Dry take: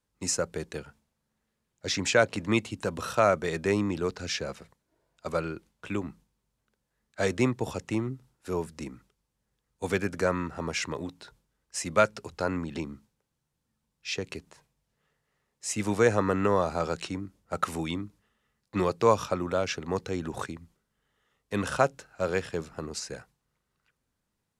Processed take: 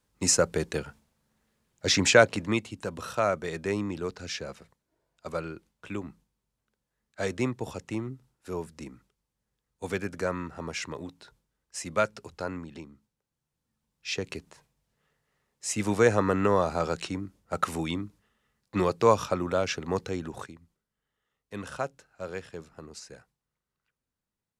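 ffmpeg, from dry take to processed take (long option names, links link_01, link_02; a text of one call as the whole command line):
ffmpeg -i in.wav -af "volume=18.5dB,afade=type=out:start_time=2.03:duration=0.57:silence=0.334965,afade=type=out:start_time=12.32:duration=0.61:silence=0.398107,afade=type=in:start_time=12.93:duration=1.27:silence=0.237137,afade=type=out:start_time=20.01:duration=0.51:silence=0.334965" out.wav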